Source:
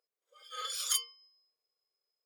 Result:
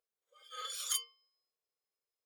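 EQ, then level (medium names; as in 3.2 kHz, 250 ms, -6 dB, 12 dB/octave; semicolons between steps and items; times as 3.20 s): band-stop 5 kHz, Q 9.9; -3.5 dB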